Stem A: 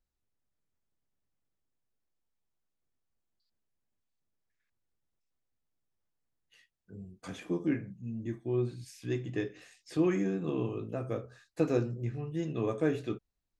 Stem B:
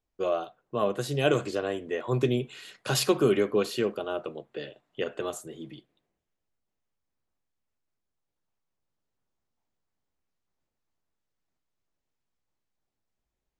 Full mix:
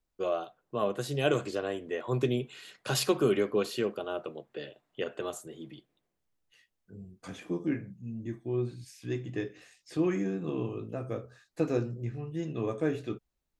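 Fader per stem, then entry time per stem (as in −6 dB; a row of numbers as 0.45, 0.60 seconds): −0.5, −3.0 decibels; 0.00, 0.00 seconds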